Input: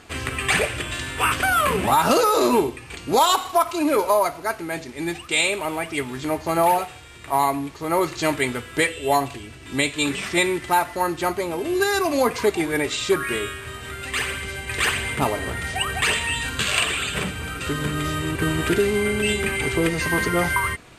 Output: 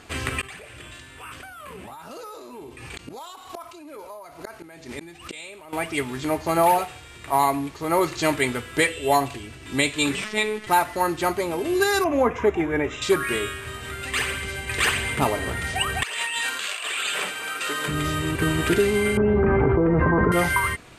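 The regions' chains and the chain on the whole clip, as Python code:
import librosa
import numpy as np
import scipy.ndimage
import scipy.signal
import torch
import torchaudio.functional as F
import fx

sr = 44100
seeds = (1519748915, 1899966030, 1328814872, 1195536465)

y = fx.chain(x, sr, fx.gate_flip(shuts_db=-22.0, range_db=-32),
    fx.tremolo(hz=2.2, depth=0.77),
    fx.env_flatten(amount_pct=70), at=(0.41, 5.73))
y = fx.chain(y, sr, fx.high_shelf(hz=8300.0, db=-9.5),
    fx.robotise(hz=214.0), at=(10.24, 10.67))
y = fx.chain(y, sr, fx.moving_average(points=10),
    fx.peak_eq(hz=71.0, db=8.0, octaves=0.26), at=(12.04, 13.02))
y = fx.chain(y, sr, fx.highpass(hz=570.0, slope=12),
    fx.over_compress(threshold_db=-28.0, ratio=-1.0), at=(16.03, 17.88))
y = fx.chain(y, sr, fx.lowpass(hz=1200.0, slope=24),
    fx.env_flatten(amount_pct=100), at=(19.17, 20.32))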